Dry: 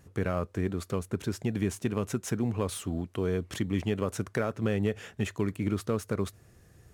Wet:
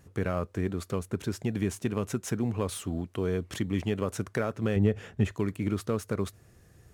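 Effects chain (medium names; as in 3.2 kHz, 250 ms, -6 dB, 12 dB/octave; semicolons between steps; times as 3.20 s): 4.76–5.32 s: tilt EQ -2 dB/octave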